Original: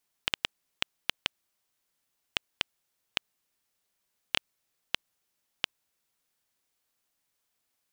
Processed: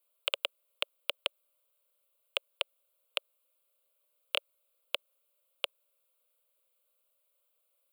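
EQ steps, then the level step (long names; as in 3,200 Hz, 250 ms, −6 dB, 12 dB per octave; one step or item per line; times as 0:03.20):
high-pass with resonance 560 Hz, resonance Q 4.9
high-shelf EQ 6,900 Hz +8.5 dB
phaser with its sweep stopped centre 1,200 Hz, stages 8
−2.0 dB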